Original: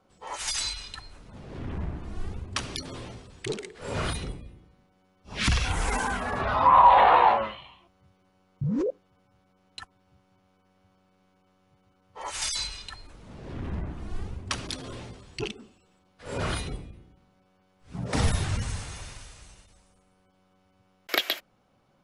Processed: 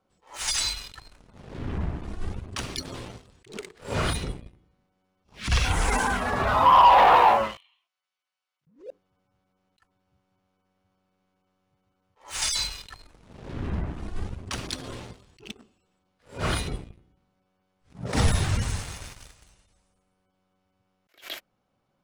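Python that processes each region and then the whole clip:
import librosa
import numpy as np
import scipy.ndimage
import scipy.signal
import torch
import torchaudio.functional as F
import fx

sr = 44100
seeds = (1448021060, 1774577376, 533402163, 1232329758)

y = fx.chain(x, sr, fx.bessel_highpass(hz=2600.0, order=2),
    fx.high_shelf(hz=5000.0, db=-4.0), at=(7.57, 8.67))
y = fx.leveller(y, sr, passes=2)
y = fx.attack_slew(y, sr, db_per_s=180.0)
y = F.gain(torch.from_numpy(y), -4.0).numpy()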